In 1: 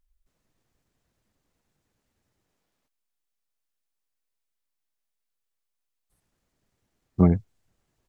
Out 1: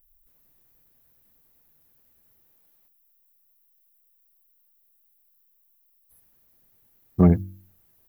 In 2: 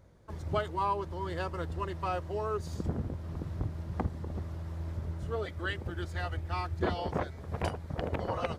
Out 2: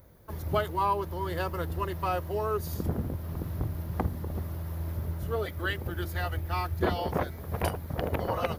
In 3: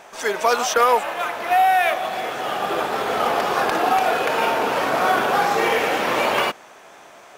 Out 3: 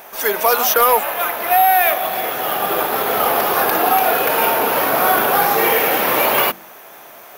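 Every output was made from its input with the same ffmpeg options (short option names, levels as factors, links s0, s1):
-af "bandreject=f=47.53:t=h:w=4,bandreject=f=95.06:t=h:w=4,bandreject=f=142.59:t=h:w=4,bandreject=f=190.12:t=h:w=4,bandreject=f=237.65:t=h:w=4,bandreject=f=285.18:t=h:w=4,bandreject=f=332.71:t=h:w=4,aexciter=amount=14.1:drive=3.8:freq=11000,aeval=exprs='1*(cos(1*acos(clip(val(0)/1,-1,1)))-cos(1*PI/2))+0.141*(cos(5*acos(clip(val(0)/1,-1,1)))-cos(5*PI/2))':c=same,volume=0.891"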